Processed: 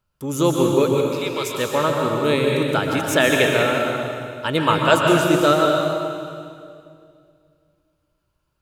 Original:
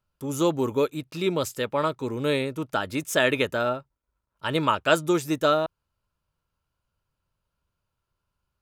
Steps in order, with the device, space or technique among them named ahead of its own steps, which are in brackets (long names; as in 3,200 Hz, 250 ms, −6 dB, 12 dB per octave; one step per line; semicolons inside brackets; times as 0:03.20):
0:00.89–0:01.55: Chebyshev high-pass filter 1,000 Hz, order 2
stairwell (convolution reverb RT60 2.3 s, pre-delay 117 ms, DRR 0 dB)
level +4 dB